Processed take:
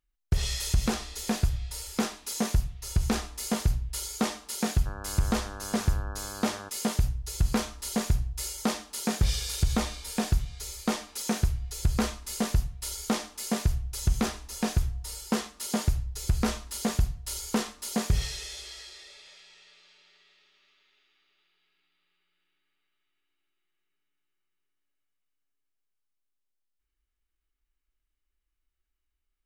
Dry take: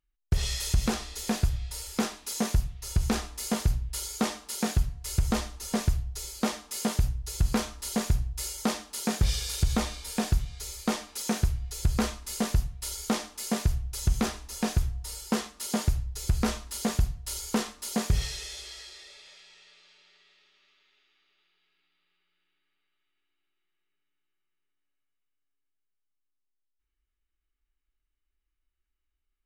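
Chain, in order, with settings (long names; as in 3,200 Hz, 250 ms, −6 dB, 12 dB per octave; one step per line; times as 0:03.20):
0:04.85–0:06.68: hum with harmonics 100 Hz, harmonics 17, −42 dBFS −1 dB per octave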